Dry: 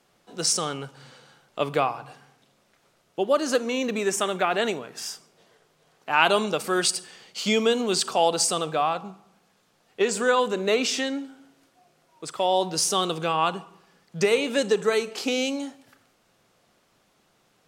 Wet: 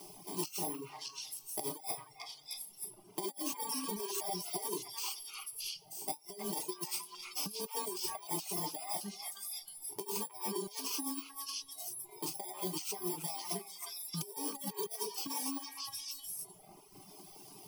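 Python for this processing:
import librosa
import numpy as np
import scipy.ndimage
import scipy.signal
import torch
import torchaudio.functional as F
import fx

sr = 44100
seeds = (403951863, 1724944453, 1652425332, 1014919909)

y = fx.bit_reversed(x, sr, seeds[0], block=32)
y = fx.dereverb_blind(y, sr, rt60_s=1.4)
y = fx.rev_double_slope(y, sr, seeds[1], early_s=0.37, late_s=1.7, knee_db=-26, drr_db=-1.0)
y = fx.over_compress(y, sr, threshold_db=-26.0, ratio=-0.5)
y = fx.peak_eq(y, sr, hz=9700.0, db=5.0, octaves=0.27)
y = fx.dereverb_blind(y, sr, rt60_s=1.2)
y = fx.high_shelf(y, sr, hz=6700.0, db=-5.0)
y = fx.fixed_phaser(y, sr, hz=350.0, stages=8)
y = fx.echo_stepped(y, sr, ms=311, hz=1600.0, octaves=1.4, feedback_pct=70, wet_db=0)
y = fx.band_squash(y, sr, depth_pct=70)
y = y * 10.0 ** (-8.0 / 20.0)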